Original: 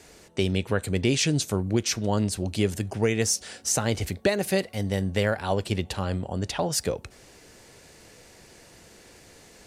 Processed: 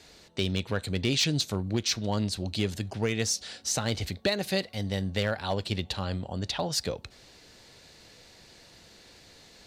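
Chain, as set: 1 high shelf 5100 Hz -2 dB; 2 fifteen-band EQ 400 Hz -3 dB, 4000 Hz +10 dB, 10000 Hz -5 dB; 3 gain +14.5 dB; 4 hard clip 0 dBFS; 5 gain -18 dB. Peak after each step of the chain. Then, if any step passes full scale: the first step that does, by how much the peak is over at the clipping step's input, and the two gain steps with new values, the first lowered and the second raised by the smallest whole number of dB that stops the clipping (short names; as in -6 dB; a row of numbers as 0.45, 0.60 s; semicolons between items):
-11.5, -9.0, +5.5, 0.0, -18.0 dBFS; step 3, 5.5 dB; step 3 +8.5 dB, step 5 -12 dB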